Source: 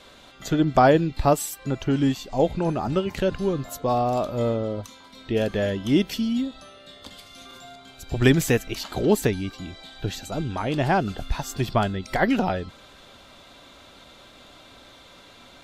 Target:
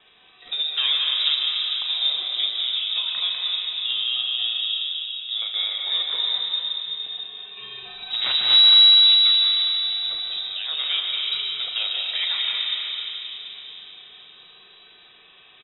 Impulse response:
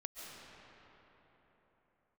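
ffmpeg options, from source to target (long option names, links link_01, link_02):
-filter_complex "[0:a]asettb=1/sr,asplit=3[link_01][link_02][link_03];[link_01]atrim=end=4.534[link_04];[link_02]atrim=start=4.53:end=5.42,asetpts=PTS-STARTPTS,afade=type=in:duration=0.004:curve=qsin,afade=type=out:start_time=0.886:duration=0.004:curve=qsin,equalizer=frequency=2800:width=0.81:gain=-12.5[link_05];[link_03]atrim=start=5.416[link_06];[link_04][link_05]acrossfade=duration=0.004:curve1=hsin:curve2=qsin[link_07];[link_07][link_06]acrossfade=duration=0.004:curve1=qsin:curve2=hsin,asettb=1/sr,asplit=3[link_08][link_09][link_10];[link_08]atrim=end=7.574[link_11];[link_09]atrim=start=7.57:end=8.54,asetpts=PTS-STARTPTS,afade=type=in:duration=0.004:curve=qsin,afade=type=out:start_time=0.966:duration=0.004:curve=qsin,aeval=exprs='0.668*(cos(1*acos(clip(val(0)/0.668,-1,1)))-cos(1*PI/2))+0.299*(cos(5*acos(clip(val(0)/0.668,-1,1)))-cos(5*PI/2))+0.335*(cos(8*acos(clip(val(0)/0.668,-1,1)))-cos(8*PI/2))':channel_layout=same[link_12];[link_10]atrim=start=8.536[link_13];[link_11][link_12]acrossfade=duration=0.004:curve1=hsin:curve2=qsin[link_14];[link_14][link_13]acrossfade=duration=0.004:curve1=qsin:curve2=hsin,volume=15dB,asoftclip=hard,volume=-15dB,asplit=2[link_15][link_16];[link_16]adelay=39,volume=-9dB[link_17];[link_15][link_17]amix=inputs=2:normalize=0[link_18];[1:a]atrim=start_sample=2205[link_19];[link_18][link_19]afir=irnorm=-1:irlink=0,lowpass=frequency=3300:width_type=q:width=0.5098,lowpass=frequency=3300:width_type=q:width=0.6013,lowpass=frequency=3300:width_type=q:width=0.9,lowpass=frequency=3300:width_type=q:width=2.563,afreqshift=-3900"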